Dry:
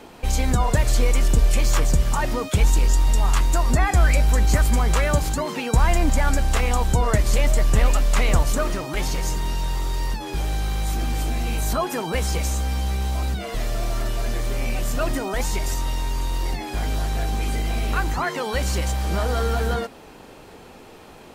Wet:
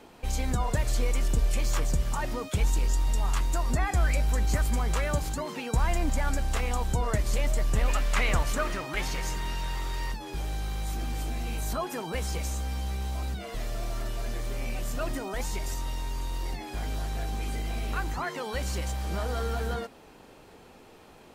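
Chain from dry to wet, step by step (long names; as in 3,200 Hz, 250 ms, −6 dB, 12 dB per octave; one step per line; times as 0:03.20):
0:07.88–0:10.12: parametric band 1,900 Hz +7.5 dB 1.9 octaves
level −8 dB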